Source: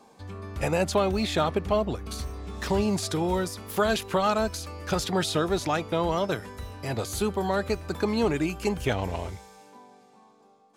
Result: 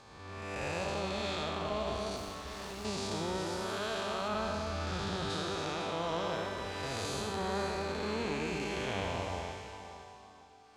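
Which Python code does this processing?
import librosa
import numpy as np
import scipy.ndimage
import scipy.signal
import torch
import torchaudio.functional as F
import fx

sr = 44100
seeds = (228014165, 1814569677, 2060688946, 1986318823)

y = fx.spec_blur(x, sr, span_ms=334.0)
y = scipy.signal.sosfilt(scipy.signal.butter(2, 6500.0, 'lowpass', fs=sr, output='sos'), y)
y = fx.tilt_shelf(y, sr, db=-6.5, hz=690.0)
y = fx.rider(y, sr, range_db=4, speed_s=0.5)
y = fx.clip_hard(y, sr, threshold_db=-37.5, at=(2.16, 2.85))
y = fx.bass_treble(y, sr, bass_db=7, treble_db=-7, at=(4.28, 5.3))
y = fx.echo_alternate(y, sr, ms=252, hz=1100.0, feedback_pct=51, wet_db=-3)
y = y * librosa.db_to_amplitude(-4.5)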